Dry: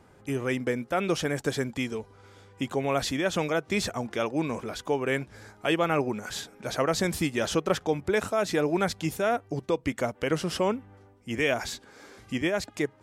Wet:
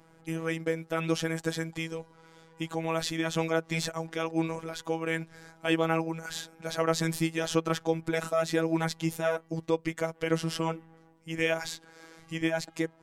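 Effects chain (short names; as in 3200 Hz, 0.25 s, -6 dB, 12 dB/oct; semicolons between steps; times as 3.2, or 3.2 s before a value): robotiser 163 Hz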